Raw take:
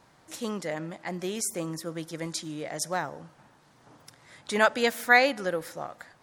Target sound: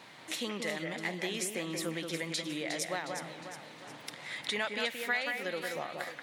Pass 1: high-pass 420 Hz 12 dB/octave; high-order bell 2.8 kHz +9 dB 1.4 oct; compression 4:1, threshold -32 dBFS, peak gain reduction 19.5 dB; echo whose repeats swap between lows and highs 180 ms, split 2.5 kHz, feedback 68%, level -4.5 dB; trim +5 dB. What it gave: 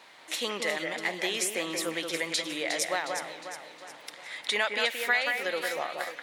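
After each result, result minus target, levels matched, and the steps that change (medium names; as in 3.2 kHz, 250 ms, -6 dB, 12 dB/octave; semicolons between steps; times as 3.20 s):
125 Hz band -12.0 dB; compression: peak gain reduction -6 dB
change: high-pass 170 Hz 12 dB/octave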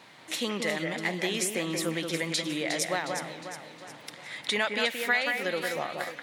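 compression: peak gain reduction -6 dB
change: compression 4:1, threshold -40 dBFS, peak gain reduction 25.5 dB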